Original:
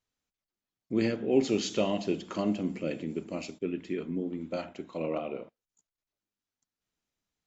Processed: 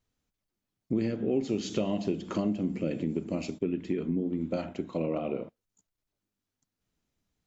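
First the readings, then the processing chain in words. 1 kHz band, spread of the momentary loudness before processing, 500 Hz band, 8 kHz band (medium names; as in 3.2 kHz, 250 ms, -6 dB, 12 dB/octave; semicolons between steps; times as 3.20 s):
-2.0 dB, 11 LU, -1.0 dB, no reading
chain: bass shelf 390 Hz +10.5 dB; compression 4:1, threshold -28 dBFS, peak gain reduction 13.5 dB; trim +1.5 dB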